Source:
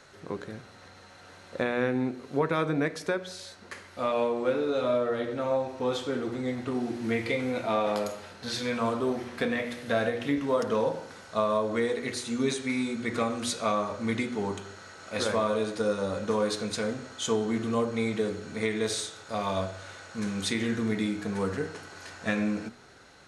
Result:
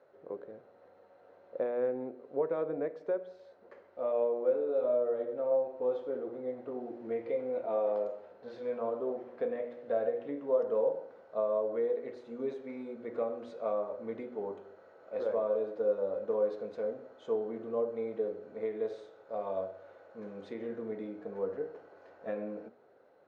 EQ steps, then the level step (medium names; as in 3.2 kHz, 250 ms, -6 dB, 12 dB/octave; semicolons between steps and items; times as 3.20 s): band-pass filter 530 Hz, Q 2.8; distance through air 89 m; 0.0 dB